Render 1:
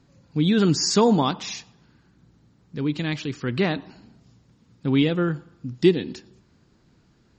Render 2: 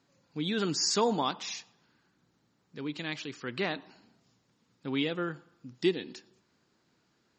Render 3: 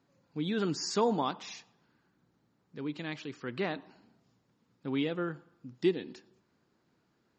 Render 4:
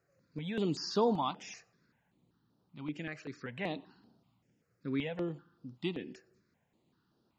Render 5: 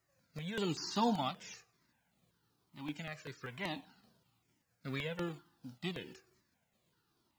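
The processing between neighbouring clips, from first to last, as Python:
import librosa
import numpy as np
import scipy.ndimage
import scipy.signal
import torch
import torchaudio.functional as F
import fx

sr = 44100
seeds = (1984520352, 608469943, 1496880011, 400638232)

y1 = fx.highpass(x, sr, hz=530.0, slope=6)
y1 = F.gain(torch.from_numpy(y1), -5.0).numpy()
y2 = fx.high_shelf(y1, sr, hz=2200.0, db=-9.0)
y3 = fx.phaser_held(y2, sr, hz=5.2, low_hz=930.0, high_hz=7300.0)
y4 = fx.envelope_flatten(y3, sr, power=0.6)
y4 = fx.comb_cascade(y4, sr, direction='falling', hz=1.1)
y4 = F.gain(torch.from_numpy(y4), 2.0).numpy()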